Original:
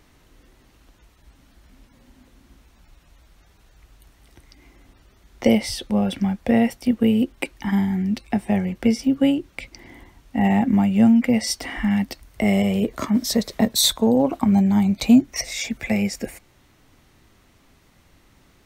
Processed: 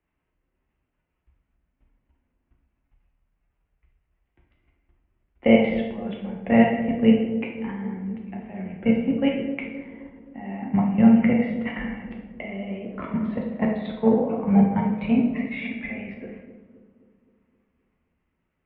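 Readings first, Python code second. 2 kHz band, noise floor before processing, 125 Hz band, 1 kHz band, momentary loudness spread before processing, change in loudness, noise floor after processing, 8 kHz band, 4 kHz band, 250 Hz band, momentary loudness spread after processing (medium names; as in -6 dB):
-1.5 dB, -57 dBFS, -4.0 dB, -2.0 dB, 10 LU, -2.5 dB, -77 dBFS, under -40 dB, -14.5 dB, -3.0 dB, 17 LU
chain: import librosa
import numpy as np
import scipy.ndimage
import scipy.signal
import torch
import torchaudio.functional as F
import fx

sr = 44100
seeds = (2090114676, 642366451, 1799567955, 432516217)

y = fx.level_steps(x, sr, step_db=16)
y = fx.dynamic_eq(y, sr, hz=310.0, q=1.9, threshold_db=-34.0, ratio=4.0, max_db=-7)
y = scipy.signal.sosfilt(scipy.signal.butter(8, 2800.0, 'lowpass', fs=sr, output='sos'), y)
y = fx.low_shelf(y, sr, hz=81.0, db=-8.5)
y = fx.echo_bbd(y, sr, ms=261, stages=1024, feedback_pct=64, wet_db=-9.0)
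y = fx.rev_plate(y, sr, seeds[0], rt60_s=1.1, hf_ratio=0.75, predelay_ms=0, drr_db=-1.0)
y = fx.band_widen(y, sr, depth_pct=40)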